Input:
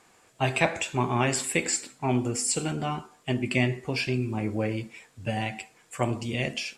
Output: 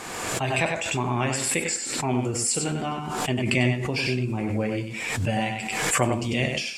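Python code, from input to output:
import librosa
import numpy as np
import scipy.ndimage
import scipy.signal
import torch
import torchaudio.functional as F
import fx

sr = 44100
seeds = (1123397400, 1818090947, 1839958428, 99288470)

p1 = fx.rider(x, sr, range_db=10, speed_s=2.0)
p2 = p1 + fx.echo_single(p1, sr, ms=97, db=-5.5, dry=0)
y = fx.pre_swell(p2, sr, db_per_s=32.0)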